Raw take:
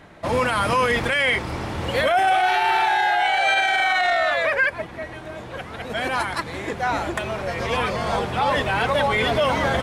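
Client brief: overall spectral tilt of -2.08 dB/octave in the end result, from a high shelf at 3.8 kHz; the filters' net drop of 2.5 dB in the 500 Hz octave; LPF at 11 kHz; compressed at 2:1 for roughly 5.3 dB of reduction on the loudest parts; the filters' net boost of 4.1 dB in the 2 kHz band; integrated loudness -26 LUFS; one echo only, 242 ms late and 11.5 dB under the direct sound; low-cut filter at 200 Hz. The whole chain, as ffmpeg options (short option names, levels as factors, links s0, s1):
-af "highpass=200,lowpass=11000,equalizer=f=500:t=o:g=-3.5,equalizer=f=2000:t=o:g=3.5,highshelf=f=3800:g=7.5,acompressor=threshold=0.0794:ratio=2,aecho=1:1:242:0.266,volume=0.668"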